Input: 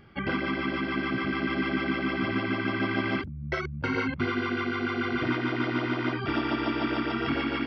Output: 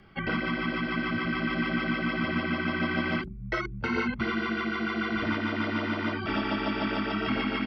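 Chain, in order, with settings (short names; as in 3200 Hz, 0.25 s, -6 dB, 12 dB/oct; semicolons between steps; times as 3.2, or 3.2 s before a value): notches 50/100/150/200/250/300/350/400 Hz; comb 4.6 ms, depth 30%; frequency shift -24 Hz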